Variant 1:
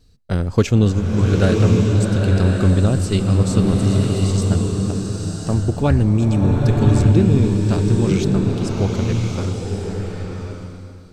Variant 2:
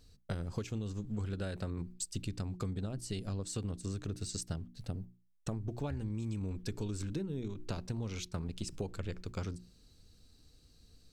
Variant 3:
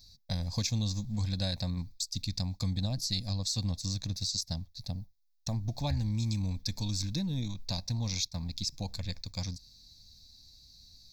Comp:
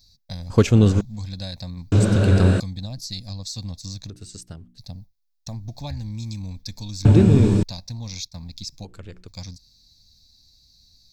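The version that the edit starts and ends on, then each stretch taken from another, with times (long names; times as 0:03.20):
3
0:00.50–0:01.01: punch in from 1
0:01.92–0:02.60: punch in from 1
0:04.10–0:04.78: punch in from 2
0:07.05–0:07.63: punch in from 1
0:08.85–0:09.28: punch in from 2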